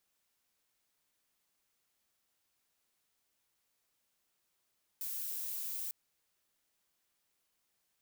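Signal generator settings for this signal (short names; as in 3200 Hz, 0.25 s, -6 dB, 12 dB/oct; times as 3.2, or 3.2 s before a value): noise violet, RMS -39.5 dBFS 0.90 s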